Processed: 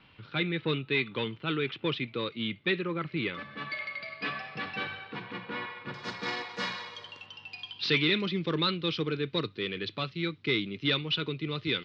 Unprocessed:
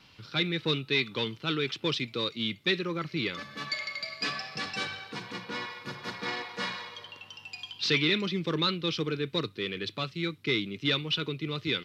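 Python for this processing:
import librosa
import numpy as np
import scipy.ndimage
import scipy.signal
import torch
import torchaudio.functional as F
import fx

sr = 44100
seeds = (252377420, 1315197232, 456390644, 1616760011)

y = fx.lowpass(x, sr, hz=fx.steps((0.0, 3200.0), (5.94, 7500.0), (7.26, 4500.0)), slope=24)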